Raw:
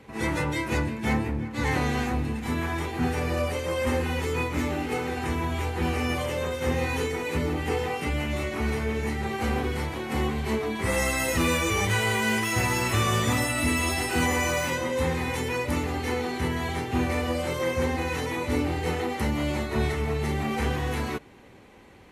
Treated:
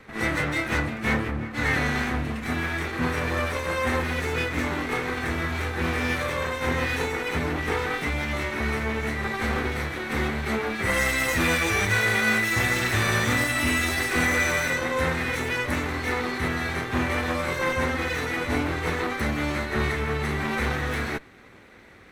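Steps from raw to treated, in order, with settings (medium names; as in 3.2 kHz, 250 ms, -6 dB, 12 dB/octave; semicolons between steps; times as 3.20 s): comb filter that takes the minimum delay 0.5 ms; peaking EQ 1.4 kHz +8 dB 2.4 oct; trim -1 dB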